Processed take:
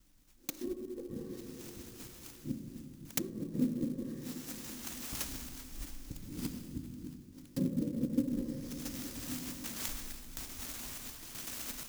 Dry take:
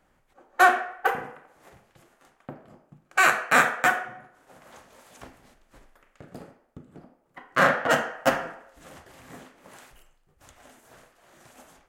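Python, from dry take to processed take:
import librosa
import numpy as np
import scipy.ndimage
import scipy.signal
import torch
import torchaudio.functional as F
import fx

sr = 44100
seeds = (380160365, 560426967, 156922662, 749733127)

p1 = fx.local_reverse(x, sr, ms=122.0)
p2 = p1 + fx.echo_single(p1, sr, ms=676, db=-17.0, dry=0)
p3 = fx.rev_plate(p2, sr, seeds[0], rt60_s=2.9, hf_ratio=0.55, predelay_ms=0, drr_db=2.0)
p4 = fx.env_lowpass_down(p3, sr, base_hz=620.0, full_db=-17.5)
p5 = scipy.signal.sosfilt(scipy.signal.ellip(3, 1.0, 40, [350.0, 5500.0], 'bandstop', fs=sr, output='sos'), p4)
p6 = fx.high_shelf(p5, sr, hz=9500.0, db=6.0)
p7 = fx.rider(p6, sr, range_db=5, speed_s=2.0)
p8 = fx.tone_stack(p7, sr, knobs='5-5-5')
p9 = p8 + 0.42 * np.pad(p8, (int(3.7 * sr / 1000.0), 0))[:len(p8)]
p10 = fx.clock_jitter(p9, sr, seeds[1], jitter_ms=0.034)
y = p10 * librosa.db_to_amplitude(17.5)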